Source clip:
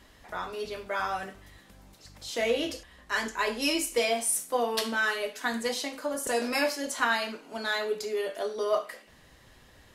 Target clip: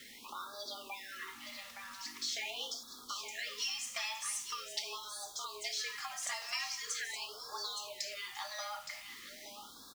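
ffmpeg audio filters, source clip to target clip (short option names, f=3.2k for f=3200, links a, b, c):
-filter_complex "[0:a]acrossover=split=6300[a][b];[b]dynaudnorm=f=760:g=5:m=9dB[c];[a][c]amix=inputs=2:normalize=0,afreqshift=190,firequalizer=gain_entry='entry(290,0);entry(1100,12);entry(5900,12);entry(11000,-14)':delay=0.05:min_phase=1,acompressor=threshold=-30dB:ratio=8,acrusher=bits=7:mix=0:aa=0.000001,equalizer=f=680:w=1.7:g=-11,bandreject=f=1.5k:w=7.2,aecho=1:1:868:0.376,afftfilt=real='re*(1-between(b*sr/1024,330*pow(2400/330,0.5+0.5*sin(2*PI*0.43*pts/sr))/1.41,330*pow(2400/330,0.5+0.5*sin(2*PI*0.43*pts/sr))*1.41))':imag='im*(1-between(b*sr/1024,330*pow(2400/330,0.5+0.5*sin(2*PI*0.43*pts/sr))/1.41,330*pow(2400/330,0.5+0.5*sin(2*PI*0.43*pts/sr))*1.41))':win_size=1024:overlap=0.75,volume=-5dB"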